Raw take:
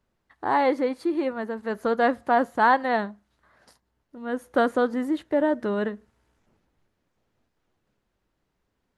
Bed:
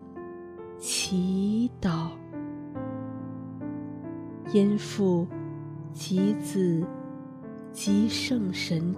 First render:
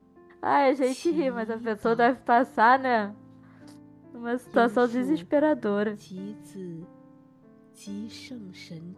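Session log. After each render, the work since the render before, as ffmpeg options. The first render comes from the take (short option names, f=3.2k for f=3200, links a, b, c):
-filter_complex "[1:a]volume=-13.5dB[a];[0:a][a]amix=inputs=2:normalize=0"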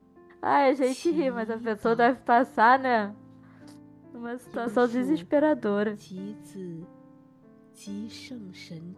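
-filter_complex "[0:a]asettb=1/sr,asplit=3[a][b][c];[a]atrim=end=4.264[d];[b]atrim=start=4.26:end=4.67,asetpts=PTS-STARTPTS,afade=t=in:d=0.004:c=qsin,afade=t=out:st=0.406:d=0.004:c=qsin,acompressor=threshold=-36dB:ratio=2:attack=3.2:release=140:knee=1:detection=peak[e];[c]atrim=start=4.666[f];[d][e]acrossfade=d=0.004:c1=hsin:c2=qsin[g];[g][f]acrossfade=d=0.004:c1=qsin:c2=hsin"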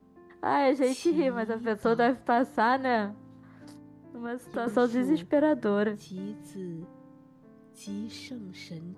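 -filter_complex "[0:a]acrossover=split=450|3000[a][b][c];[b]acompressor=threshold=-26dB:ratio=2.5[d];[a][d][c]amix=inputs=3:normalize=0"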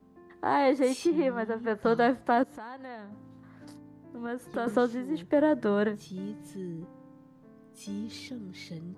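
-filter_complex "[0:a]asettb=1/sr,asplit=3[a][b][c];[a]atrim=end=1.074[d];[b]atrim=start=1.07:end=1.85,asetpts=PTS-STARTPTS,afade=t=in:d=0.004:c=qsin,afade=t=out:st=0.776:d=0.004:c=qsin,bass=f=250:g=-3,treble=f=4k:g=-11[e];[c]atrim=start=1.846[f];[d][e]acrossfade=d=0.004:c1=hsin:c2=qsin[g];[g][f]acrossfade=d=0.004:c1=qsin:c2=hsin,asettb=1/sr,asplit=3[h][i][j];[h]atrim=end=2.434[k];[i]atrim=start=2.43:end=3.12,asetpts=PTS-STARTPTS,afade=t=in:d=0.004:c=qsin,afade=t=out:st=0.686:d=0.004:c=qsin,acompressor=threshold=-44dB:ratio=3:attack=3.2:release=140:knee=1:detection=peak[l];[j]atrim=start=3.116[m];[k][l]acrossfade=d=0.004:c1=hsin:c2=qsin[n];[n][m]acrossfade=d=0.004:c1=qsin:c2=hsin,asplit=3[o][p][q];[o]atrim=end=5.02,asetpts=PTS-STARTPTS,afade=t=out:st=4.77:d=0.25:silence=0.354813[r];[p]atrim=start=5.02:end=5.08,asetpts=PTS-STARTPTS,volume=-9dB[s];[q]atrim=start=5.08,asetpts=PTS-STARTPTS,afade=t=in:d=0.25:silence=0.354813[t];[r][s][t]concat=n=3:v=0:a=1"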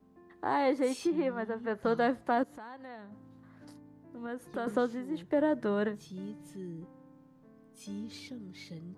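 -af "volume=-4dB"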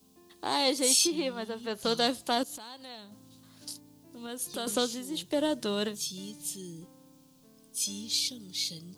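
-af "aeval=exprs='0.15*(cos(1*acos(clip(val(0)/0.15,-1,1)))-cos(1*PI/2))+0.00841*(cos(3*acos(clip(val(0)/0.15,-1,1)))-cos(3*PI/2))':c=same,aexciter=amount=10.7:drive=6.4:freq=2.8k"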